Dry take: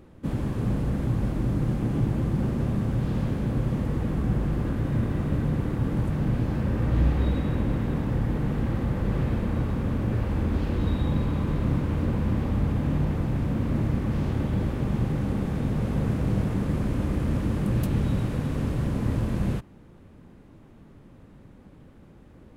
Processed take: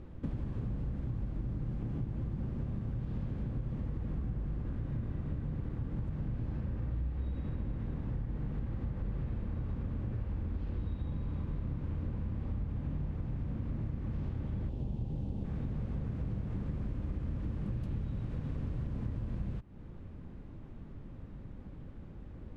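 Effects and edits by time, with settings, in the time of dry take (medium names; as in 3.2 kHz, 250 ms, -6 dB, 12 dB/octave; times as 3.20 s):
14.69–15.44 s: high-order bell 1.6 kHz -12 dB 1.3 oct
whole clip: Bessel low-pass 4.5 kHz, order 2; bass shelf 120 Hz +12 dB; compression, threshold -31 dBFS; trim -3 dB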